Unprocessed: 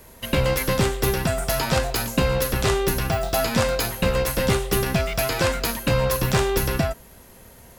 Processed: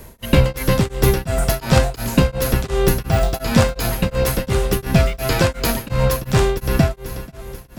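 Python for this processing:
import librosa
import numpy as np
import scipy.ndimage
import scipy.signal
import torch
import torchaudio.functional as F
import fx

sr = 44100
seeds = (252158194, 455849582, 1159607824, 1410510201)

y = fx.low_shelf(x, sr, hz=330.0, db=7.0)
y = fx.rider(y, sr, range_db=10, speed_s=0.5)
y = fx.echo_feedback(y, sr, ms=487, feedback_pct=51, wet_db=-13)
y = y * np.abs(np.cos(np.pi * 2.8 * np.arange(len(y)) / sr))
y = F.gain(torch.from_numpy(y), 3.5).numpy()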